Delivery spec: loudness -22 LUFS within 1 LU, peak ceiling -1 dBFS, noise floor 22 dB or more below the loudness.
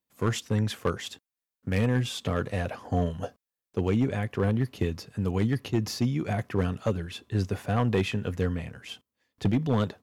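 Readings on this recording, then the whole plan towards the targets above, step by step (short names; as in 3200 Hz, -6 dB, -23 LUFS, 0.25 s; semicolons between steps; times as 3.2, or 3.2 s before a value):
clipped 0.7%; flat tops at -17.0 dBFS; loudness -29.0 LUFS; peak -17.0 dBFS; loudness target -22.0 LUFS
-> clip repair -17 dBFS; gain +7 dB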